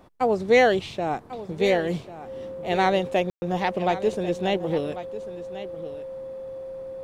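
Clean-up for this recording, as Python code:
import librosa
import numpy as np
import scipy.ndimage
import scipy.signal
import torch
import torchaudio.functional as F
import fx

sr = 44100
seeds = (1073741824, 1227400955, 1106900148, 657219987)

y = fx.notch(x, sr, hz=530.0, q=30.0)
y = fx.fix_ambience(y, sr, seeds[0], print_start_s=0.0, print_end_s=0.5, start_s=3.3, end_s=3.42)
y = fx.fix_echo_inverse(y, sr, delay_ms=1094, level_db=-14.0)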